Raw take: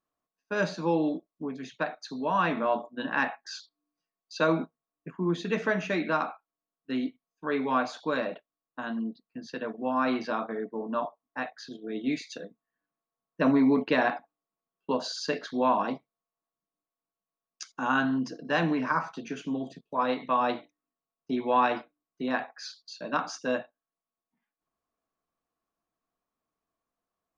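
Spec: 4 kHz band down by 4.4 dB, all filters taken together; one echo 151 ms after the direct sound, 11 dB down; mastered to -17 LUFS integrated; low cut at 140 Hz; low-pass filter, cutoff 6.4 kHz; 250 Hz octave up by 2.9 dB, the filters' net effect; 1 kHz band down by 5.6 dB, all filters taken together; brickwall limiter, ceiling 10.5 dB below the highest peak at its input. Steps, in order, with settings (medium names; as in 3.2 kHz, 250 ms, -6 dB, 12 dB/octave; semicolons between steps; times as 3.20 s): high-pass 140 Hz; low-pass 6.4 kHz; peaking EQ 250 Hz +4 dB; peaking EQ 1 kHz -7 dB; peaking EQ 4 kHz -4.5 dB; peak limiter -22.5 dBFS; delay 151 ms -11 dB; trim +16 dB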